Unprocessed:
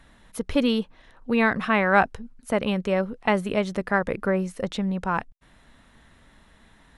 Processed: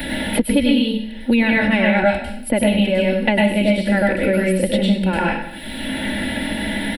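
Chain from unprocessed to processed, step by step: high shelf 8000 Hz +11.5 dB; fixed phaser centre 2800 Hz, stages 4; comb 3.5 ms, depth 58%; reverb RT60 0.50 s, pre-delay 96 ms, DRR -3.5 dB; three-band squash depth 100%; gain +2.5 dB

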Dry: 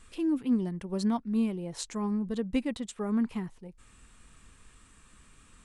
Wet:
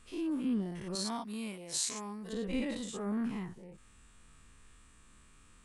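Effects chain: spectral dilation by 0.12 s; 0.95–2.33 tilt +3 dB/oct; gain -8.5 dB

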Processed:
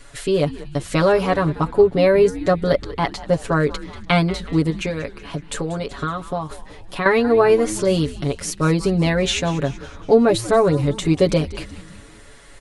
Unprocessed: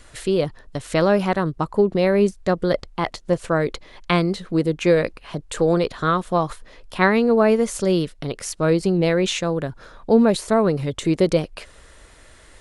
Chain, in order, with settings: comb 7.1 ms, depth 89%; 4.7–7.06 compressor, threshold -22 dBFS, peak gain reduction 11.5 dB; frequency-shifting echo 0.187 s, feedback 56%, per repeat -120 Hz, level -16 dB

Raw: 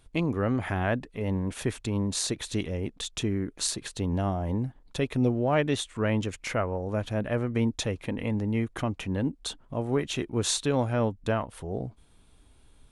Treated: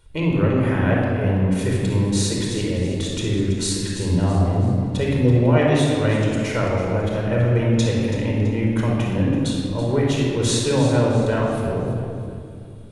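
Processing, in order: on a send: echo with dull and thin repeats by turns 0.165 s, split 840 Hz, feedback 63%, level -8.5 dB; on the sum: shoebox room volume 3700 m³, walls mixed, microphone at 4.7 m

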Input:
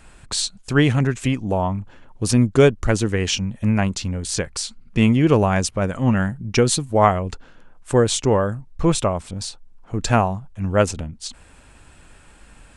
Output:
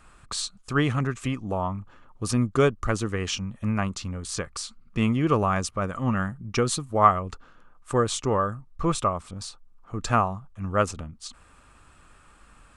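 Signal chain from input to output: bell 1200 Hz +14 dB 0.3 oct; gain -7.5 dB

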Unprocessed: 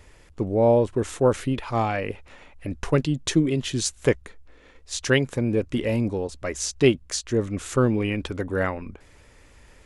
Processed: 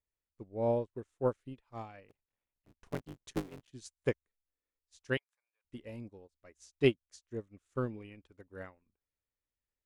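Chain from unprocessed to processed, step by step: 2.08–3.72 cycle switcher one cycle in 3, muted; 5.17–5.65 inverse Chebyshev high-pass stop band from 220 Hz, stop band 70 dB; upward expander 2.5:1, over -38 dBFS; gain -7.5 dB

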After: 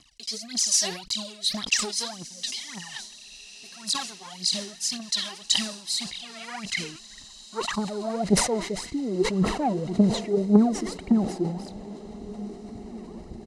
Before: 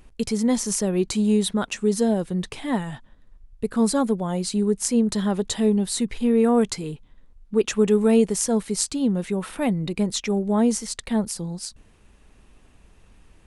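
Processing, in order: low shelf 460 Hz +6 dB; comb 1 ms, depth 75%; sample leveller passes 2; reverse; compressor 4:1, threshold -22 dBFS, peak gain reduction 12.5 dB; reverse; phaser 1.8 Hz, delay 3.2 ms, feedback 80%; rotary speaker horn 0.9 Hz; band-pass sweep 4700 Hz -> 430 Hz, 5.9–8.77; diffused feedback echo 1.894 s, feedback 45%, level -16 dB; sustainer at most 88 dB/s; gain +7.5 dB

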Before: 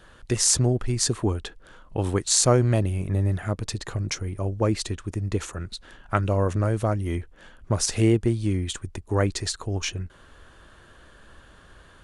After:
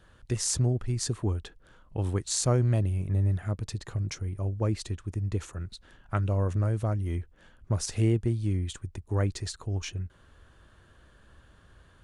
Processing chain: bell 88 Hz +7.5 dB 2.3 oct; gain -9 dB

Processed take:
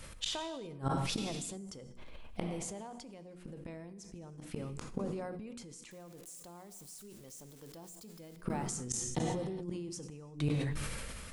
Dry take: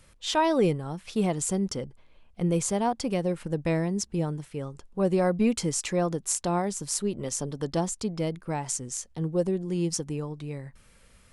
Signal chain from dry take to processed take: 5.91–8.36 switching spikes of -26.5 dBFS; notches 60/120/180/240/300/360/420 Hz; compressor 5:1, threshold -29 dBFS, peak gain reduction 10 dB; flipped gate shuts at -28 dBFS, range -26 dB; non-linear reverb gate 0.44 s falling, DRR 11.5 dB; sustainer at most 22 dB/s; gain +6 dB

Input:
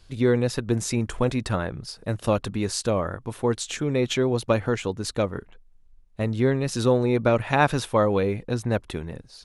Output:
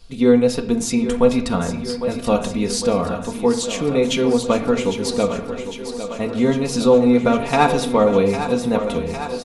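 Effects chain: bell 1700 Hz -7 dB 0.44 oct; comb 4.3 ms, depth 73%; thinning echo 0.804 s, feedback 72%, high-pass 170 Hz, level -10 dB; on a send at -7 dB: reverb RT60 0.75 s, pre-delay 6 ms; on the sum: gain +3 dB

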